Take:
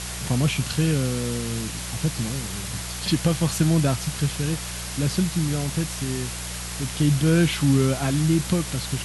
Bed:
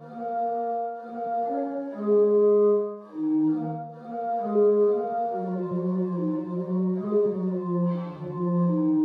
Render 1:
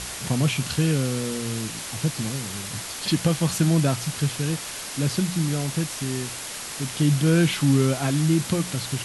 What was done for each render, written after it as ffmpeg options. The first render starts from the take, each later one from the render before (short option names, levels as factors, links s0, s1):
-af "bandreject=f=60:t=h:w=4,bandreject=f=120:t=h:w=4,bandreject=f=180:t=h:w=4"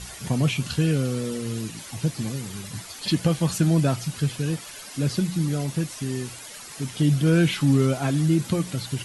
-af "afftdn=nr=11:nf=-35"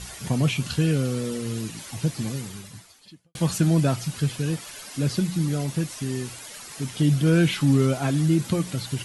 -filter_complex "[0:a]asplit=2[s0][s1];[s0]atrim=end=3.35,asetpts=PTS-STARTPTS,afade=t=out:st=2.39:d=0.96:c=qua[s2];[s1]atrim=start=3.35,asetpts=PTS-STARTPTS,afade=t=in:d=0.004:c=hsin[s3];[s2][s3]concat=n=2:v=0:a=1"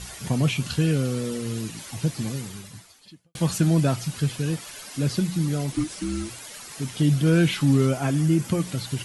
-filter_complex "[0:a]asettb=1/sr,asplit=3[s0][s1][s2];[s0]atrim=end=5.724[s3];[s1]atrim=start=5.72:end=6.3,asetpts=PTS-STARTPTS,afade=t=in:d=0.004:c=qsin,afade=t=out:st=0.576:d=0.004:c=qsin,afreqshift=-460[s4];[s2]atrim=start=6.296[s5];[s3][s4]acrossfade=d=0.004:c1=hsin:c2=qsin[s6];[s6][s5]acrossfade=d=0.004:c1=qsin:c2=hsin,asettb=1/sr,asplit=3[s7][s8][s9];[s7]atrim=end=7.894[s10];[s8]atrim=start=7.89:end=8.59,asetpts=PTS-STARTPTS,afade=t=in:d=0.004:c=qsin,afade=t=out:st=0.696:d=0.004:c=qsin,equalizer=f=3900:t=o:w=0.23:g=-10[s11];[s9]atrim=start=8.586[s12];[s10][s11]acrossfade=d=0.004:c1=hsin:c2=qsin[s13];[s13][s12]acrossfade=d=0.004:c1=qsin:c2=hsin"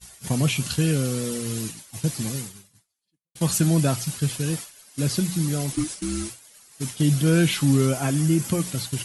-af "agate=range=0.0224:threshold=0.0355:ratio=3:detection=peak,highshelf=f=6500:g=11.5"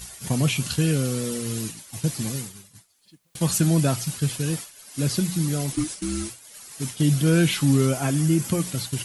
-af "acompressor=mode=upward:threshold=0.0251:ratio=2.5"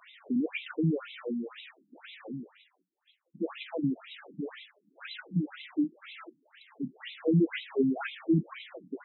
-af "afftfilt=real='re*between(b*sr/1024,220*pow(2900/220,0.5+0.5*sin(2*PI*2*pts/sr))/1.41,220*pow(2900/220,0.5+0.5*sin(2*PI*2*pts/sr))*1.41)':imag='im*between(b*sr/1024,220*pow(2900/220,0.5+0.5*sin(2*PI*2*pts/sr))/1.41,220*pow(2900/220,0.5+0.5*sin(2*PI*2*pts/sr))*1.41)':win_size=1024:overlap=0.75"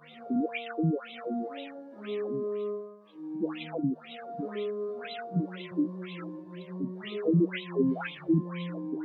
-filter_complex "[1:a]volume=0.211[s0];[0:a][s0]amix=inputs=2:normalize=0"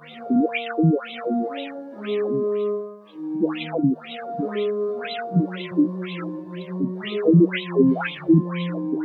-af "volume=2.99"